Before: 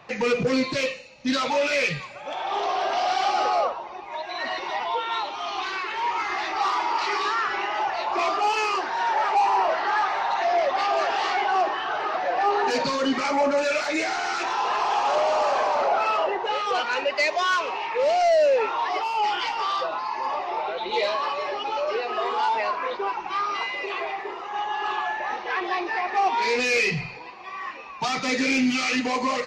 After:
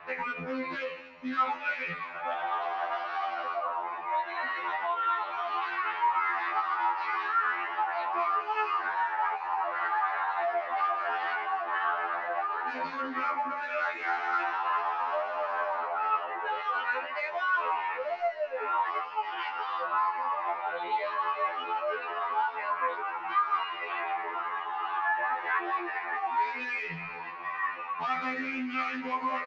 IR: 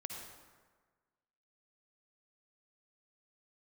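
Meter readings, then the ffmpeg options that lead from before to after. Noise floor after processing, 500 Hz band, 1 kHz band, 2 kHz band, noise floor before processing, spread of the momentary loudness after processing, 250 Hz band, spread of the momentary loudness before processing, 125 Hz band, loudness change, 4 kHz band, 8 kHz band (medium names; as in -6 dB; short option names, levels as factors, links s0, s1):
-39 dBFS, -12.0 dB, -5.0 dB, -4.5 dB, -38 dBFS, 5 LU, -12.5 dB, 8 LU, no reading, -6.5 dB, -15.0 dB, under -25 dB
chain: -af "alimiter=limit=0.133:level=0:latency=1,acompressor=threshold=0.0282:ratio=6,lowpass=2800,equalizer=f=1400:t=o:w=2:g=15,aecho=1:1:259|518|777|1036:0.0944|0.0538|0.0307|0.0175,afftfilt=real='re*2*eq(mod(b,4),0)':imag='im*2*eq(mod(b,4),0)':win_size=2048:overlap=0.75,volume=0.531"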